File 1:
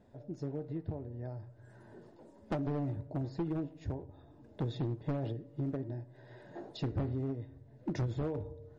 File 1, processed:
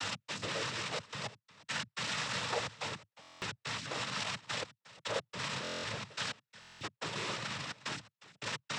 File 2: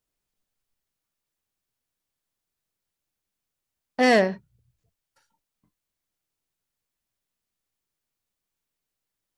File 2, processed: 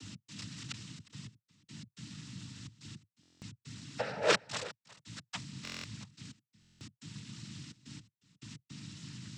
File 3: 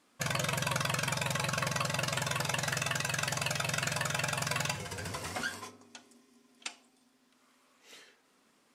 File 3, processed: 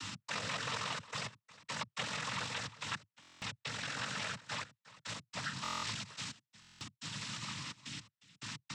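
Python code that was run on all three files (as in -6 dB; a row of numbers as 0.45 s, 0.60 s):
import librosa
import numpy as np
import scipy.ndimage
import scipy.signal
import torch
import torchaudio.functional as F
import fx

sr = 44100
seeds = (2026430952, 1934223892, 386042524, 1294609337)

y = x + 0.5 * 10.0 ** (-16.5 / 20.0) * np.diff(np.sign(x), prepend=np.sign(x[:1]))
y = scipy.signal.sosfilt(scipy.signal.butter(2, 720.0, 'highpass', fs=sr, output='sos'), y)
y = y + 0.74 * np.pad(y, (int(1.8 * sr / 1000.0), 0))[:len(y)]
y = fx.over_compress(y, sr, threshold_db=-31.0, ratio=-0.5)
y = fx.add_hum(y, sr, base_hz=50, snr_db=12)
y = fx.step_gate(y, sr, bpm=107, pattern='x.xxxxx.x...', floor_db=-60.0, edge_ms=4.5)
y = fx.air_absorb(y, sr, metres=180.0)
y = y + 10.0 ** (-18.5 / 20.0) * np.pad(y, (int(358 * sr / 1000.0), 0))[:len(y)]
y = fx.noise_vocoder(y, sr, seeds[0], bands=12)
y = fx.buffer_glitch(y, sr, at_s=(3.21, 5.63, 6.6), block=1024, repeats=8)
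y = y * librosa.db_to_amplitude(4.5)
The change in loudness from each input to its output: 0.0 LU, -19.5 LU, -8.0 LU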